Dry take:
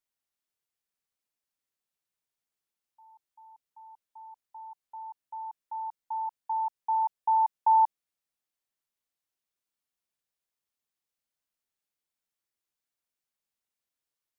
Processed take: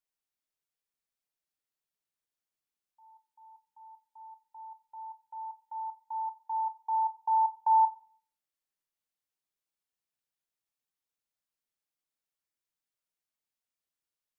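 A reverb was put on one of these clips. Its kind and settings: shoebox room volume 580 m³, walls furnished, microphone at 0.55 m; gain -4 dB

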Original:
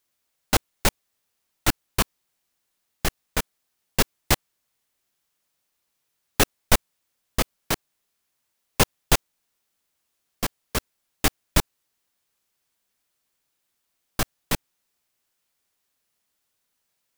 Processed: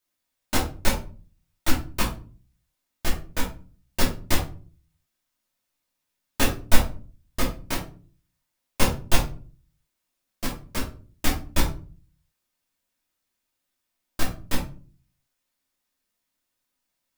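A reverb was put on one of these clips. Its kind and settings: shoebox room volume 240 m³, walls furnished, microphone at 2.7 m; gain -8 dB

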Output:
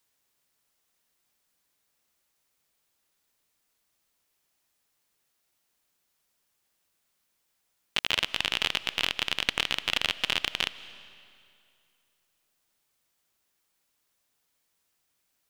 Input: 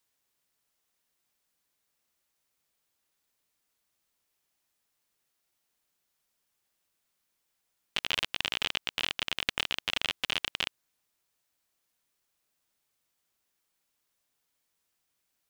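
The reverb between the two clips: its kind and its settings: digital reverb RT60 2.4 s, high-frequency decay 0.9×, pre-delay 0.12 s, DRR 16 dB; gain +3.5 dB

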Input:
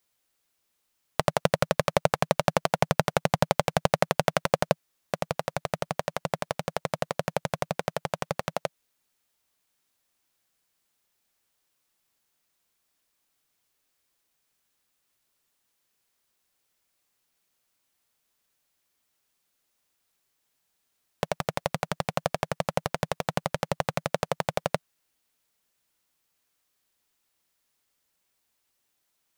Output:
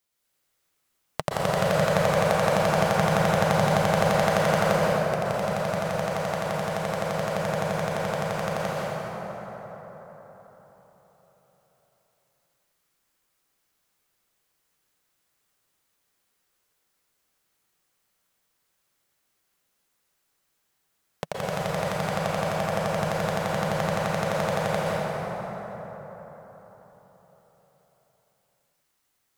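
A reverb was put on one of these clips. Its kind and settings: plate-style reverb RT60 4.5 s, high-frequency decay 0.45×, pre-delay 0.11 s, DRR -7.5 dB; gain -4.5 dB

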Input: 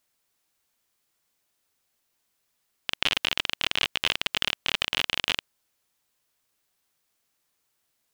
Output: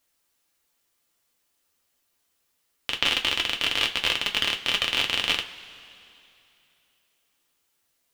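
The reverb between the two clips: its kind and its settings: two-slope reverb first 0.2 s, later 2.9 s, from -22 dB, DRR 2 dB

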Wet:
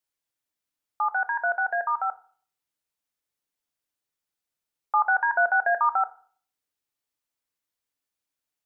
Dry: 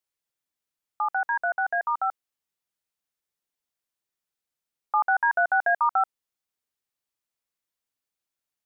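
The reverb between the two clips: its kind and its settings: FDN reverb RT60 0.47 s, low-frequency decay 1.2×, high-frequency decay 0.8×, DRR 9.5 dB

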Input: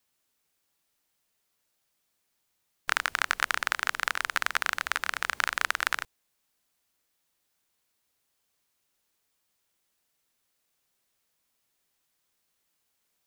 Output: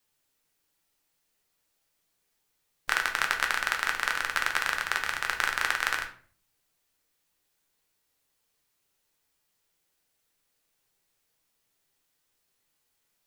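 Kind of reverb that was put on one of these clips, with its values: shoebox room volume 41 m³, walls mixed, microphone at 0.46 m; gain -1 dB

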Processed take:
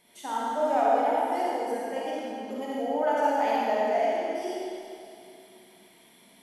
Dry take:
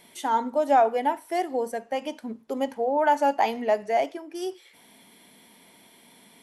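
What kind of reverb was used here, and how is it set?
digital reverb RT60 2.6 s, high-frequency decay 0.95×, pre-delay 10 ms, DRR -7 dB; gain -9.5 dB

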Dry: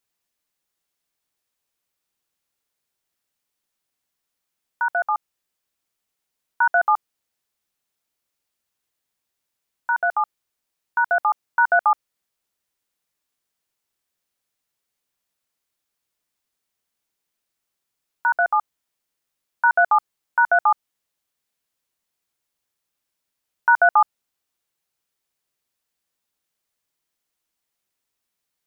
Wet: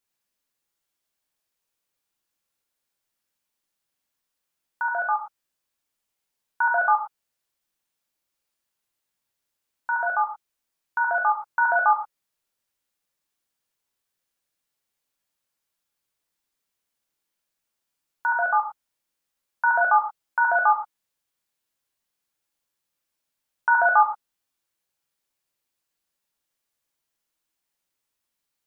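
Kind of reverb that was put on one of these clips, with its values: non-linear reverb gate 0.13 s flat, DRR 1.5 dB; gain -3.5 dB

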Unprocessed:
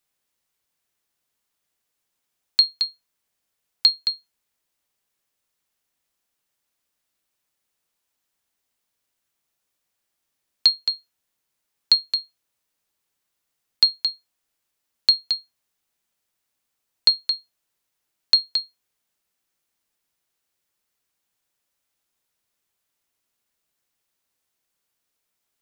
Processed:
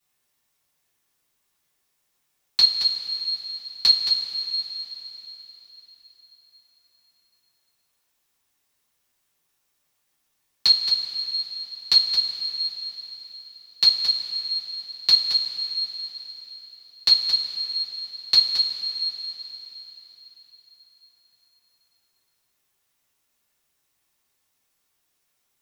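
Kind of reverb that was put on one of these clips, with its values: two-slope reverb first 0.22 s, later 4.3 s, from -19 dB, DRR -10 dB; gain -5 dB

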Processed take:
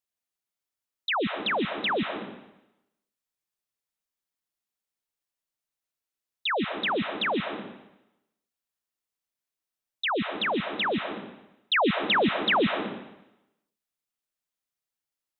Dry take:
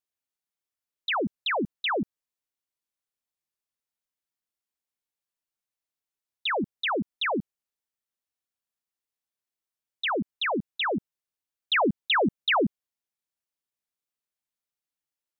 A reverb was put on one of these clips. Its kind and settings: digital reverb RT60 0.9 s, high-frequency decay 1×, pre-delay 0.1 s, DRR 6 dB

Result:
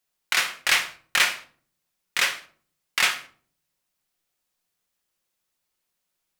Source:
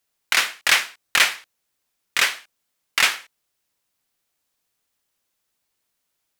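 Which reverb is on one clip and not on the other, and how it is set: shoebox room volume 450 m³, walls furnished, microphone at 0.97 m; gain -4 dB

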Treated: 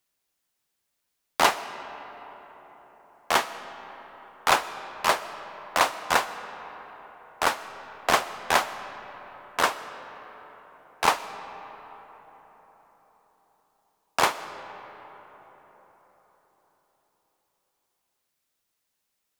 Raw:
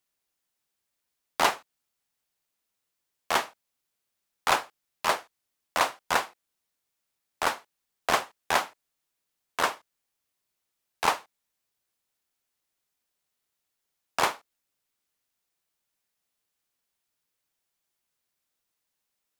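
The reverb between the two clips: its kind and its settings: digital reverb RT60 4.8 s, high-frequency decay 0.45×, pre-delay 80 ms, DRR 12.5 dB; gain +3 dB

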